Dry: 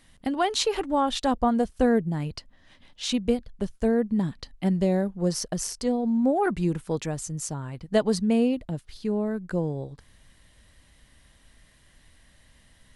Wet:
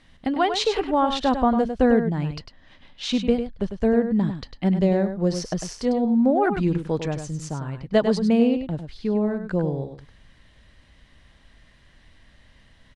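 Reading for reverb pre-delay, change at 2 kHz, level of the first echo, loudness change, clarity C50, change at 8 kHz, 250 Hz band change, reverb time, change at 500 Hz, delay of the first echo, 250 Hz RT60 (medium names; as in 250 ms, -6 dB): no reverb, +3.5 dB, -8.5 dB, +3.5 dB, no reverb, -5.0 dB, +3.5 dB, no reverb, +3.5 dB, 100 ms, no reverb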